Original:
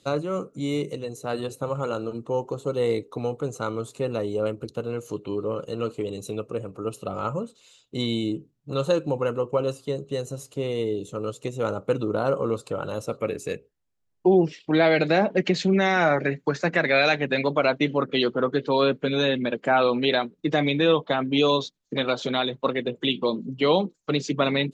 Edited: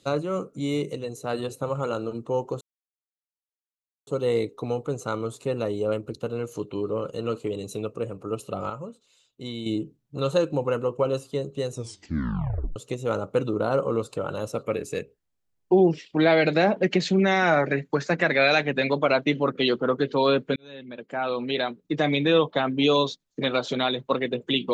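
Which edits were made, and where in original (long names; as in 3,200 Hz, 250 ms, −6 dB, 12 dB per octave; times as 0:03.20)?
0:02.61: splice in silence 1.46 s
0:07.24–0:08.20: clip gain −8 dB
0:10.24: tape stop 1.06 s
0:19.10–0:20.74: fade in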